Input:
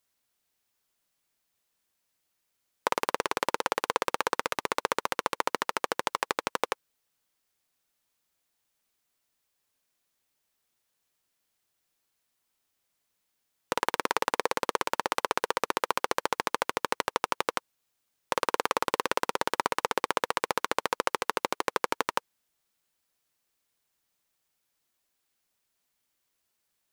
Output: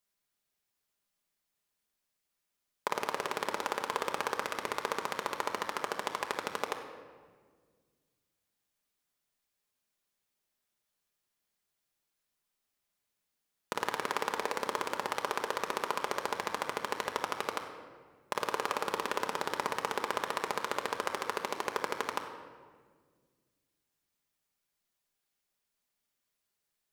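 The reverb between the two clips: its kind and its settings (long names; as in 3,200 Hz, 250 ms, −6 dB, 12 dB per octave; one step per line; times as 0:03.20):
rectangular room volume 2,000 cubic metres, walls mixed, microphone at 1.3 metres
level −6.5 dB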